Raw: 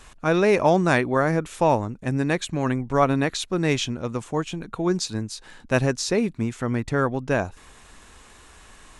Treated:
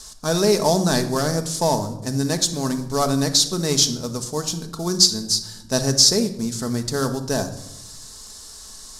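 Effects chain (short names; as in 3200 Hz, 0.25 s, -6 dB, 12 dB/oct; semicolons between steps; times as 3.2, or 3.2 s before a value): CVSD 64 kbps; resonant high shelf 3500 Hz +12 dB, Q 3; shoebox room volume 2500 m³, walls furnished, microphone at 1.5 m; gain -1.5 dB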